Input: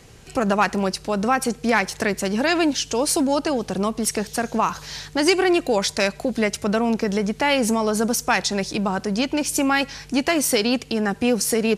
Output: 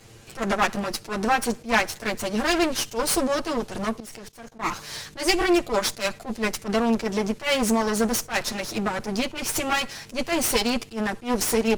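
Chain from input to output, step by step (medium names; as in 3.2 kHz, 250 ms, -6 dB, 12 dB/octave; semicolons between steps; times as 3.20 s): comb filter that takes the minimum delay 8.8 ms; 4.00–4.62 s: level held to a coarse grid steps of 20 dB; attacks held to a fixed rise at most 240 dB/s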